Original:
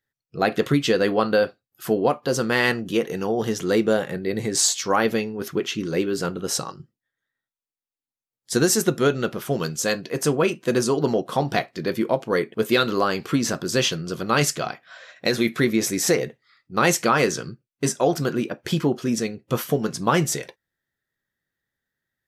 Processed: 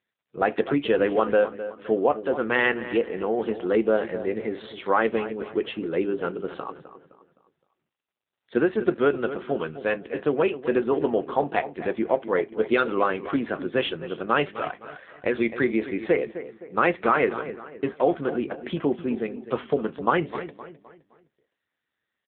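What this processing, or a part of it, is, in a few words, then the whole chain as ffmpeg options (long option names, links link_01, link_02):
telephone: -filter_complex "[0:a]asettb=1/sr,asplit=3[link_01][link_02][link_03];[link_01]atrim=end=16.844[link_04];[link_02]atrim=start=16.84:end=17.38,asetpts=PTS-STARTPTS,afade=type=in:duration=0.004:curve=qsin,afade=type=out:start_time=0.536:duration=0.004:curve=qsin,equalizer=frequency=3000:width_type=o:width=0.25:gain=-6[link_05];[link_03]atrim=start=17.376[link_06];[link_04][link_05]acrossfade=duration=0.004:curve1=hsin:curve2=qsin[link_07];[link_07][link_06]acrossfade=duration=0.004:curve1=qsin:curve2=hsin,highpass=270,lowpass=3100,asplit=2[link_08][link_09];[link_09]adelay=258,lowpass=frequency=2800:poles=1,volume=-12.5dB,asplit=2[link_10][link_11];[link_11]adelay=258,lowpass=frequency=2800:poles=1,volume=0.4,asplit=2[link_12][link_13];[link_13]adelay=258,lowpass=frequency=2800:poles=1,volume=0.4,asplit=2[link_14][link_15];[link_15]adelay=258,lowpass=frequency=2800:poles=1,volume=0.4[link_16];[link_08][link_10][link_12][link_14][link_16]amix=inputs=5:normalize=0" -ar 8000 -c:a libopencore_amrnb -b:a 7400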